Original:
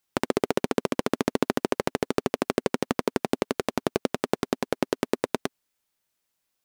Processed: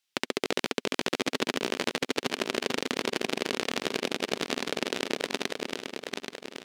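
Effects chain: regenerating reverse delay 0.414 s, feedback 66%, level -3 dB; weighting filter D; gain -7 dB

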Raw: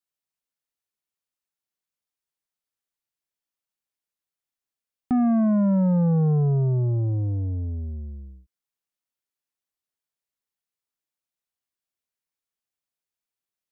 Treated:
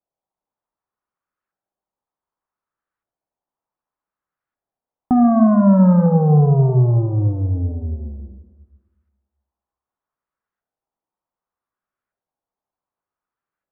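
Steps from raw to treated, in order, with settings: LFO low-pass saw up 0.66 Hz 710–1500 Hz; plate-style reverb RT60 1.4 s, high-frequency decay 0.95×, DRR 6 dB; gain +6 dB

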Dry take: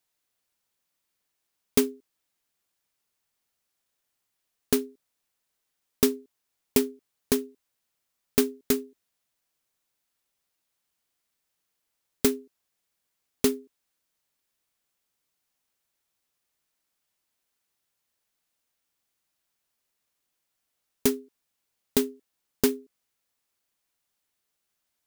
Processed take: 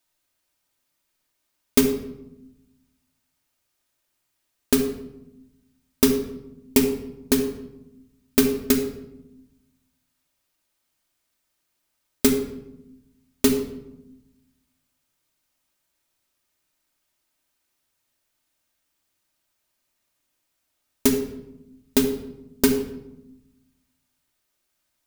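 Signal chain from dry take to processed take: shoebox room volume 3100 m³, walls furnished, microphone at 2.7 m; gain +3 dB

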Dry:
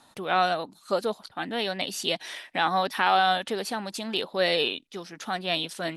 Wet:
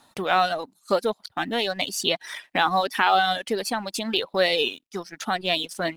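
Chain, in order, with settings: G.711 law mismatch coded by A; in parallel at +1 dB: compressor, threshold -33 dBFS, peak gain reduction 14.5 dB; on the sum: reverb removal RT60 1.1 s; gain +2 dB

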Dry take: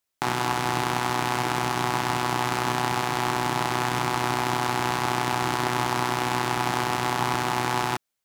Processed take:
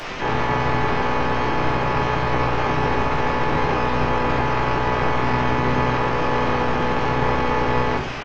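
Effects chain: delta modulation 16 kbps, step -29.5 dBFS; shoebox room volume 56 m³, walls mixed, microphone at 0.87 m; harmoniser -12 st -3 dB, +12 st -8 dB

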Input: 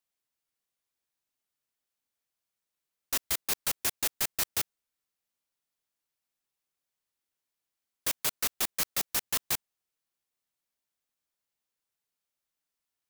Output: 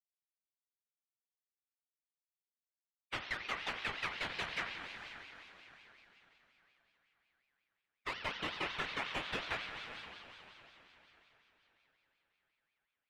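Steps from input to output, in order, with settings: per-bin expansion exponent 3; LPF 1200 Hz 12 dB/oct; diffused feedback echo 0.457 s, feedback 44%, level -12.5 dB; chorus 0.29 Hz, delay 15.5 ms, depth 7 ms; compressor, threshold -50 dBFS, peak gain reduction 5.5 dB; spring tank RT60 2.3 s, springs 44 ms, chirp 50 ms, DRR 3.5 dB; ring modulator with a swept carrier 2000 Hz, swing 25%, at 5.5 Hz; gain +18 dB

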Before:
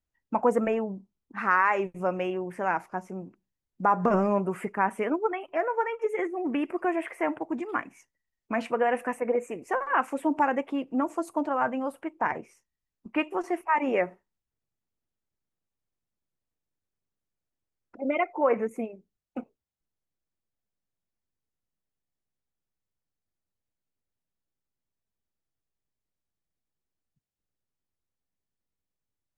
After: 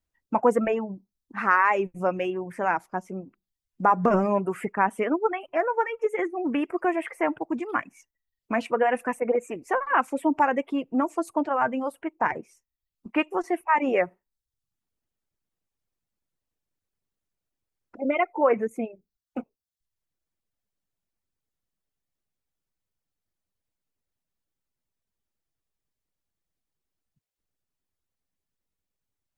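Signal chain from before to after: reverb removal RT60 0.57 s; gain +3 dB

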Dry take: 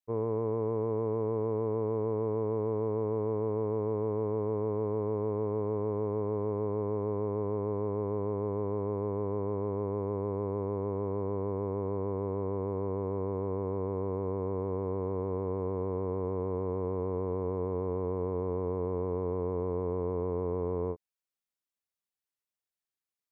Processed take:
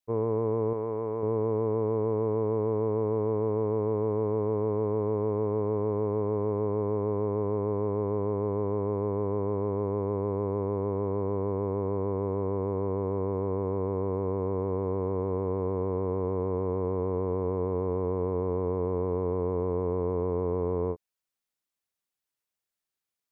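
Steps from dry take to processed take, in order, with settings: 0.73–1.23 low shelf 430 Hz -7.5 dB; gain +3.5 dB

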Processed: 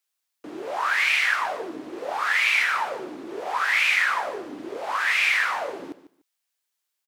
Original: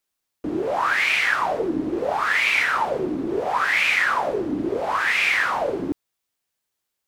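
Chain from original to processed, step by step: HPF 1200 Hz 6 dB/oct; on a send: feedback echo 0.147 s, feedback 20%, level -14.5 dB

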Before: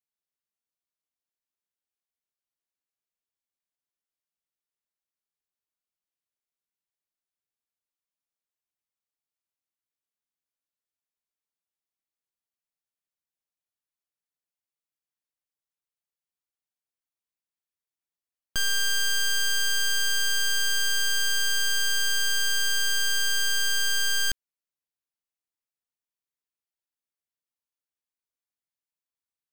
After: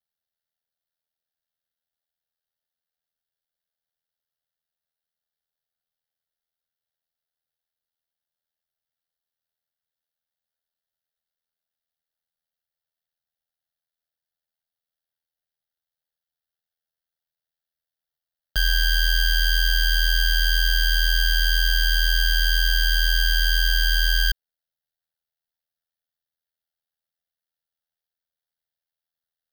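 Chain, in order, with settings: ring modulator 41 Hz; fixed phaser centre 1600 Hz, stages 8; gain +8 dB

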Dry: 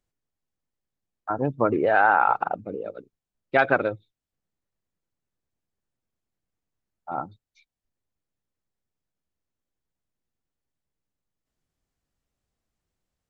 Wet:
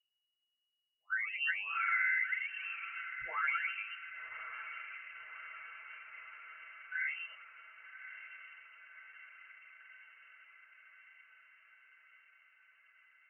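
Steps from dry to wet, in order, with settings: spectral delay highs early, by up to 0.942 s; gate -54 dBFS, range -11 dB; compressor 2.5:1, threshold -44 dBFS, peak gain reduction 17.5 dB; fixed phaser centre 1100 Hz, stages 4; diffused feedback echo 1.148 s, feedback 67%, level -11 dB; inverted band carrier 2900 Hz; gain +7.5 dB

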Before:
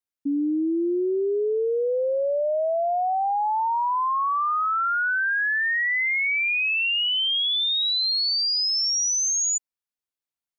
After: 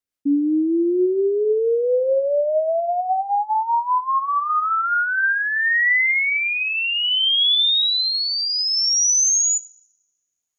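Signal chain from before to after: two-slope reverb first 0.64 s, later 1.6 s, from -18 dB, DRR 15.5 dB; rotary speaker horn 5 Hz, later 0.6 Hz, at 4.78; gain +6.5 dB

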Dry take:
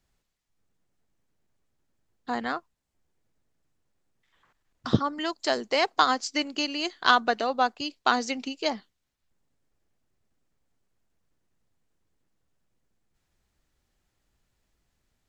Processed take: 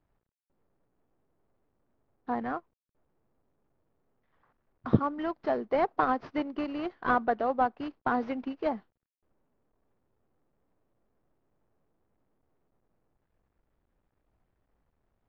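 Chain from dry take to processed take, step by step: CVSD 32 kbps; LPF 1200 Hz 12 dB/oct

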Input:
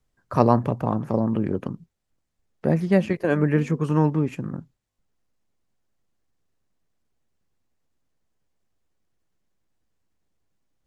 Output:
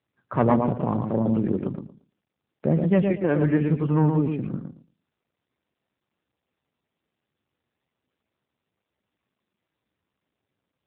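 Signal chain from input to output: tape echo 0.115 s, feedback 22%, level -4 dB, low-pass 1300 Hz; soft clip -8.5 dBFS, distortion -18 dB; AMR-NB 7.95 kbps 8000 Hz

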